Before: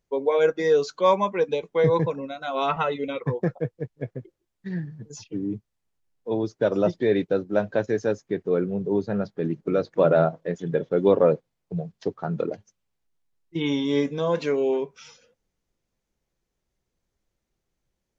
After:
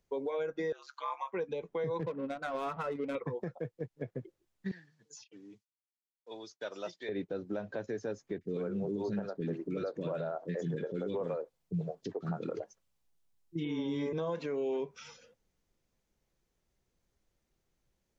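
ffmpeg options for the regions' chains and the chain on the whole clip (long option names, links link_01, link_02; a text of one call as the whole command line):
ffmpeg -i in.wav -filter_complex "[0:a]asettb=1/sr,asplit=3[link_01][link_02][link_03];[link_01]atrim=end=0.724[link_04];[link_02]atrim=start=0.72:end=1.33,asetpts=PTS-STARTPTS,afade=type=in:duration=0.004:curve=qsin,afade=type=out:start_time=0.606:duration=0.004:curve=qsin,acrossover=split=2700[link_05][link_06];[link_06]acompressor=threshold=-48dB:ratio=4:attack=1:release=60[link_07];[link_05][link_07]amix=inputs=2:normalize=0,highpass=frequency=970:width=0.5412,highpass=frequency=970:width=1.3066,aeval=exprs='val(0)*sin(2*PI*69*n/s)':channel_layout=same[link_08];[link_03]atrim=start=1.326[link_09];[link_04][link_08]acrossfade=duration=0.004:curve1=hsin:curve2=qsin[link_10];[link_10][link_09]acrossfade=duration=0.004:curve1=qsin:curve2=hsin,asettb=1/sr,asplit=3[link_11][link_12][link_13];[link_11]atrim=end=2.004[link_14];[link_12]atrim=start=2:end=3.15,asetpts=PTS-STARTPTS,afade=type=in:duration=0.004:curve=qsin,afade=type=out:start_time=1.146:duration=0.004:curve=qsin,highpass=frequency=170:poles=1,equalizer=frequency=800:width=2.1:gain=-6.5,adynamicsmooth=sensitivity=4.5:basefreq=660[link_15];[link_13]atrim=start=3.146[link_16];[link_14][link_15]acrossfade=duration=0.004:curve1=hsin:curve2=qsin[link_17];[link_17][link_16]acrossfade=duration=0.004:curve1=qsin:curve2=hsin,asettb=1/sr,asplit=3[link_18][link_19][link_20];[link_18]atrim=end=4.714[link_21];[link_19]atrim=start=4.71:end=7.09,asetpts=PTS-STARTPTS,afade=type=in:duration=0.004:curve=qsin,afade=type=out:start_time=2.376:duration=0.004:curve=qsin,agate=range=-33dB:threshold=-51dB:ratio=3:release=100:detection=peak,bandpass=frequency=6000:width_type=q:width=0.72[link_22];[link_20]atrim=start=7.086[link_23];[link_21][link_22]acrossfade=duration=0.004:curve1=hsin:curve2=qsin[link_24];[link_24][link_23]acrossfade=duration=0.004:curve1=qsin:curve2=hsin,asettb=1/sr,asplit=3[link_25][link_26][link_27];[link_25]atrim=end=8.384[link_28];[link_26]atrim=start=8.38:end=14.13,asetpts=PTS-STARTPTS,afade=type=in:duration=0.004:curve=qsin,afade=type=out:start_time=5.746:duration=0.004:curve=qsin,highshelf=frequency=5400:gain=3.5,acrossover=split=370|1700[link_29][link_30][link_31];[link_31]adelay=30[link_32];[link_30]adelay=90[link_33];[link_29][link_33][link_32]amix=inputs=3:normalize=0,atrim=end_sample=253575[link_34];[link_27]atrim=start=14.126[link_35];[link_28][link_34]acrossfade=duration=0.004:curve1=hsin:curve2=qsin[link_36];[link_36][link_35]acrossfade=duration=0.004:curve1=qsin:curve2=hsin,acrossover=split=120|2200[link_37][link_38][link_39];[link_37]acompressor=threshold=-53dB:ratio=4[link_40];[link_38]acompressor=threshold=-27dB:ratio=4[link_41];[link_39]acompressor=threshold=-52dB:ratio=4[link_42];[link_40][link_41][link_42]amix=inputs=3:normalize=0,alimiter=level_in=3dB:limit=-24dB:level=0:latency=1:release=208,volume=-3dB" out.wav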